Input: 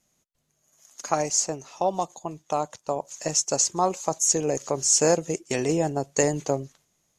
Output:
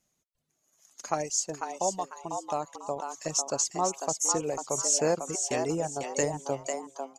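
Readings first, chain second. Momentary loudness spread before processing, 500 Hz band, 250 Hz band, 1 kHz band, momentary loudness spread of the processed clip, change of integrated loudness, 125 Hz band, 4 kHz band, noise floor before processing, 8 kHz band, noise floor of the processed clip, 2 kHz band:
11 LU, -5.0 dB, -6.5 dB, -3.5 dB, 10 LU, -5.0 dB, -7.5 dB, -5.0 dB, -73 dBFS, -4.5 dB, -78 dBFS, -4.5 dB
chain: reverb removal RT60 1.7 s; frequency-shifting echo 0.497 s, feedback 31%, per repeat +130 Hz, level -6 dB; gain -5 dB

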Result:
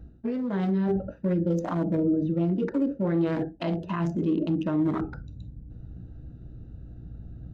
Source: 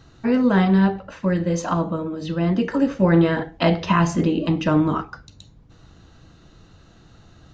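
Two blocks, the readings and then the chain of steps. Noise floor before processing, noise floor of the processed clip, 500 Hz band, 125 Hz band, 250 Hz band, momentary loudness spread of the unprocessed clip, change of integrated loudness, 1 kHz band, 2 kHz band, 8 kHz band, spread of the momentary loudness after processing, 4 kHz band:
-51 dBFS, -46 dBFS, -6.5 dB, -7.0 dB, -6.0 dB, 9 LU, -6.5 dB, -12.0 dB, -14.5 dB, n/a, 19 LU, -15.0 dB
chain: Wiener smoothing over 41 samples; hum 60 Hz, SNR 28 dB; reverse; compressor 6:1, threshold -30 dBFS, peak gain reduction 16.5 dB; reverse; bell 240 Hz +3 dB 0.77 oct; limiter -27.5 dBFS, peak gain reduction 8.5 dB; dynamic EQ 410 Hz, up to +6 dB, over -48 dBFS, Q 0.95; gate with hold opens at -46 dBFS; spectral noise reduction 6 dB; gain +6 dB

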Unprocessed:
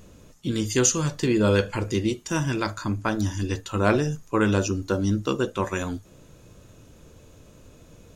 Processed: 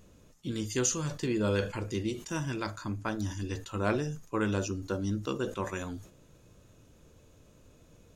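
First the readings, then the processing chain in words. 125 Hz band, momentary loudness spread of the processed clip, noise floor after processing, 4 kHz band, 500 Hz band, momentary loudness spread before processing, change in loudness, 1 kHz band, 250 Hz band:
-8.0 dB, 8 LU, -59 dBFS, -8.0 dB, -8.0 dB, 8 LU, -8.0 dB, -8.5 dB, -8.5 dB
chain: sustainer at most 130 dB/s; gain -8.5 dB

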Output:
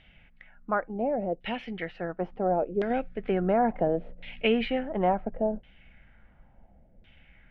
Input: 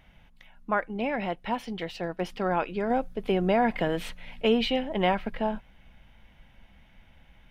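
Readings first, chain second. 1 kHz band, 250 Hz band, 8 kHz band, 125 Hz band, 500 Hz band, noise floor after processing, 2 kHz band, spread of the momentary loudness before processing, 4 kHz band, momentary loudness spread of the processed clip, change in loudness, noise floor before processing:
-1.0 dB, -1.0 dB, n/a, -1.0 dB, +0.5 dB, -59 dBFS, -3.0 dB, 10 LU, -5.5 dB, 9 LU, -0.5 dB, -57 dBFS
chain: bell 1000 Hz -10 dB 0.46 oct; LFO low-pass saw down 0.71 Hz 460–3300 Hz; gain -1.5 dB

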